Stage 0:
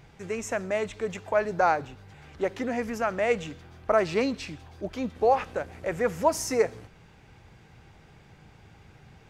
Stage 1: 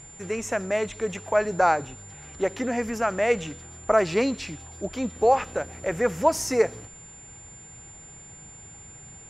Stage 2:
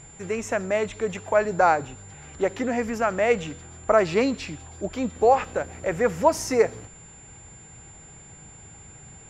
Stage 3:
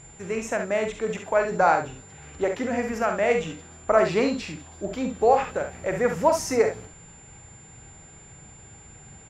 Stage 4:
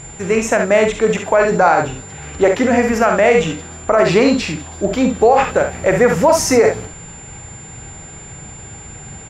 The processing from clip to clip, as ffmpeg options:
-af "aeval=exprs='val(0)+0.00447*sin(2*PI*7200*n/s)':c=same,volume=1.33"
-af "highshelf=f=6500:g=-6.5,volume=1.19"
-af "aecho=1:1:45|68:0.398|0.398,volume=0.841"
-af "alimiter=level_in=5.31:limit=0.891:release=50:level=0:latency=1,volume=0.841"

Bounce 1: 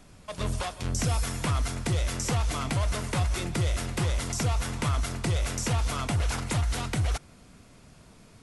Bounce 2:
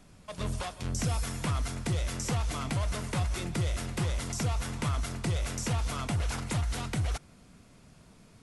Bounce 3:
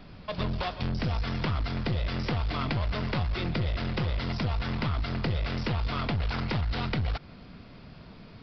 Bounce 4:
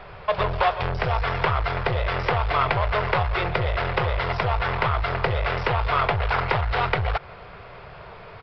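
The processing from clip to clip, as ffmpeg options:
-af "equalizer=f=180:t=o:w=0.83:g=3,volume=0.631"
-af "acompressor=threshold=0.0224:ratio=4,aresample=11025,aeval=exprs='clip(val(0),-1,0.0133)':c=same,aresample=44100,volume=2.66"
-af "aeval=exprs='0.158*(cos(1*acos(clip(val(0)/0.158,-1,1)))-cos(1*PI/2))+0.00355*(cos(5*acos(clip(val(0)/0.158,-1,1)))-cos(5*PI/2))':c=same,firequalizer=gain_entry='entry(120,0);entry(250,-17);entry(400,7);entry(870,11);entry(2200,7);entry(4600,-5)':delay=0.05:min_phase=1,volume=1.41"

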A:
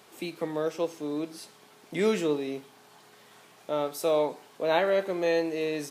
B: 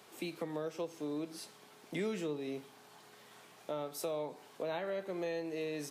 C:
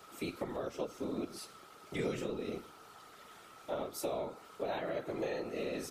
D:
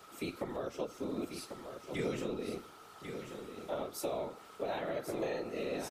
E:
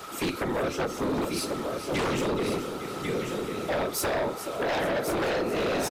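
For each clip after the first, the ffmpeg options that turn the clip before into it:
-filter_complex "[0:a]acrossover=split=150[s0][s1];[s1]acompressor=threshold=0.0224:ratio=5[s2];[s0][s2]amix=inputs=2:normalize=0,volume=0.708"
-af "aeval=exprs='val(0)+0.00141*sin(2*PI*1300*n/s)':c=same,afftfilt=real='hypot(re,im)*cos(2*PI*random(0))':imag='hypot(re,im)*sin(2*PI*random(1))':win_size=512:overlap=0.75,volume=2.11"
-af "aecho=1:1:1094:0.398"
-af "aecho=1:1:427|854|1281|1708|2135:0.224|0.116|0.0605|0.0315|0.0164,aeval=exprs='0.0668*sin(PI/2*3.55*val(0)/0.0668)':c=same"

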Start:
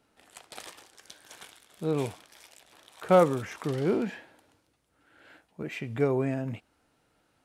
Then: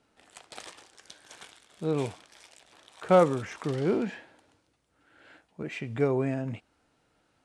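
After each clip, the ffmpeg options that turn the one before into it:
-af "lowpass=f=9500:w=0.5412,lowpass=f=9500:w=1.3066"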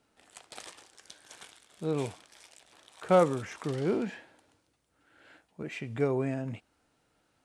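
-af "highshelf=f=8800:g=7,volume=0.75"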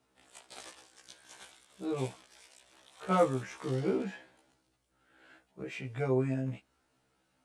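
-af "afftfilt=real='re*1.73*eq(mod(b,3),0)':imag='im*1.73*eq(mod(b,3),0)':win_size=2048:overlap=0.75"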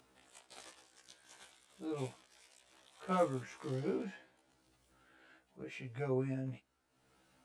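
-af "acompressor=mode=upward:threshold=0.00224:ratio=2.5,volume=0.501"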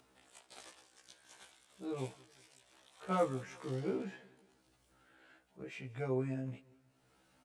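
-af "aecho=1:1:183|366|549:0.0668|0.0327|0.016"

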